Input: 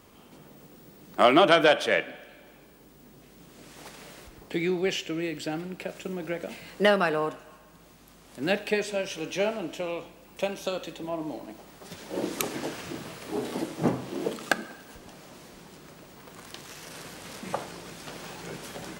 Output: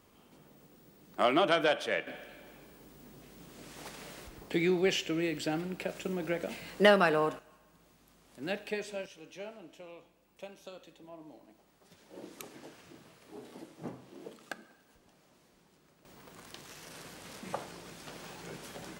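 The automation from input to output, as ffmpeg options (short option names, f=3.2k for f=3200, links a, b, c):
-af "asetnsamples=n=441:p=0,asendcmd='2.07 volume volume -1dB;7.39 volume volume -9.5dB;9.06 volume volume -17dB;16.05 volume volume -6dB',volume=-8dB"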